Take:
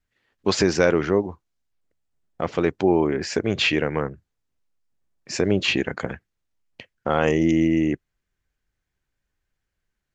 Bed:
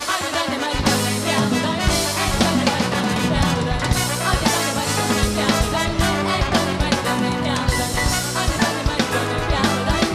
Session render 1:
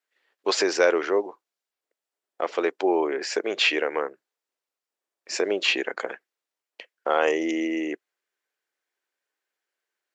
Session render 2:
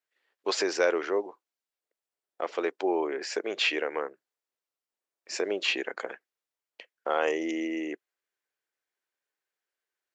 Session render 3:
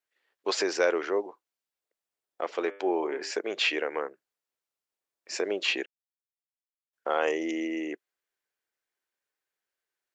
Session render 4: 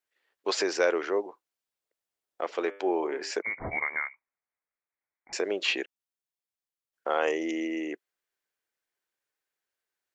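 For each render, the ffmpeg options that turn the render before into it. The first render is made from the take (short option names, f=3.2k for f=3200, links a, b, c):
-af "highpass=f=380:w=0.5412,highpass=f=380:w=1.3066,bandreject=f=6.4k:w=28"
-af "volume=-5dB"
-filter_complex "[0:a]asettb=1/sr,asplit=3[a][b][c];[a]atrim=end=2.574[d];[b]atrim=start=2.57:end=3.31,asetpts=PTS-STARTPTS,afade=t=in:d=0.004:c=qsin,afade=t=out:st=0.736:d=0.004:c=qsin,bandreject=f=99.44:t=h:w=4,bandreject=f=198.88:t=h:w=4,bandreject=f=298.32:t=h:w=4,bandreject=f=397.76:t=h:w=4,bandreject=f=497.2:t=h:w=4,bandreject=f=596.64:t=h:w=4,bandreject=f=696.08:t=h:w=4,bandreject=f=795.52:t=h:w=4,bandreject=f=894.96:t=h:w=4,bandreject=f=994.4:t=h:w=4,bandreject=f=1.09384k:t=h:w=4,bandreject=f=1.19328k:t=h:w=4,bandreject=f=1.29272k:t=h:w=4,bandreject=f=1.39216k:t=h:w=4,bandreject=f=1.4916k:t=h:w=4,bandreject=f=1.59104k:t=h:w=4,bandreject=f=1.69048k:t=h:w=4,bandreject=f=1.78992k:t=h:w=4,bandreject=f=1.88936k:t=h:w=4,bandreject=f=1.9888k:t=h:w=4,bandreject=f=2.08824k:t=h:w=4,bandreject=f=2.18768k:t=h:w=4,bandreject=f=2.28712k:t=h:w=4,bandreject=f=2.38656k:t=h:w=4,bandreject=f=2.486k:t=h:w=4,bandreject=f=2.58544k:t=h:w=4,bandreject=f=2.68488k:t=h:w=4,bandreject=f=2.78432k:t=h:w=4,bandreject=f=2.88376k:t=h:w=4,bandreject=f=2.9832k:t=h:w=4,bandreject=f=3.08264k:t=h:w=4,bandreject=f=3.18208k:t=h:w=4,bandreject=f=3.28152k:t=h:w=4,bandreject=f=3.38096k:t=h:w=4,bandreject=f=3.4804k:t=h:w=4[e];[c]atrim=start=3.306[f];[d][e]acrossfade=d=0.004:c1=hsin:c2=qsin[g];[g][f]acrossfade=d=0.004:c1=qsin:c2=hsin,asplit=3[h][i][j];[h]atrim=end=5.86,asetpts=PTS-STARTPTS,afade=t=out:st=5.856:d=0.004:c=hsin[k];[i]atrim=start=5.86:end=6.93,asetpts=PTS-STARTPTS,volume=0[l];[j]atrim=start=6.93,asetpts=PTS-STARTPTS,afade=t=in:d=0.004:c=hsin[m];[k][l][m]concat=n=3:v=0:a=1"
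-filter_complex "[0:a]asettb=1/sr,asplit=3[a][b][c];[a]atrim=end=3.424[d];[b]atrim=start=3.42:end=5.33,asetpts=PTS-STARTPTS,afade=t=in:d=0.004:c=qsin,afade=t=out:st=1.906:d=0.004:c=qsin,lowpass=f=2.2k:t=q:w=0.5098,lowpass=f=2.2k:t=q:w=0.6013,lowpass=f=2.2k:t=q:w=0.9,lowpass=f=2.2k:t=q:w=2.563,afreqshift=-2600[e];[c]atrim=start=5.326[f];[d][e]acrossfade=d=0.004:c1=hsin:c2=qsin[g];[g][f]acrossfade=d=0.004:c1=qsin:c2=hsin"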